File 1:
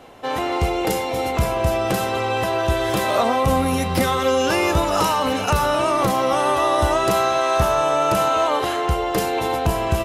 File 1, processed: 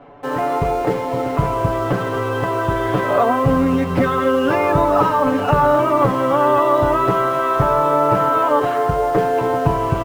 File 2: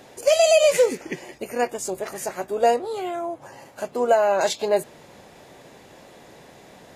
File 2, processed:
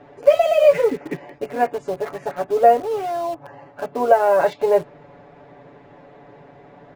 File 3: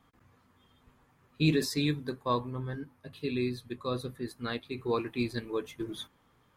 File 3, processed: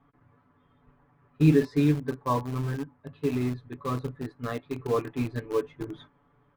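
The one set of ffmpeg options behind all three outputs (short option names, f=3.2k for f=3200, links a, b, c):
-filter_complex "[0:a]lowpass=1.6k,aecho=1:1:7:0.91,asplit=2[a][b];[b]acrusher=bits=4:mix=0:aa=0.000001,volume=-12dB[c];[a][c]amix=inputs=2:normalize=0"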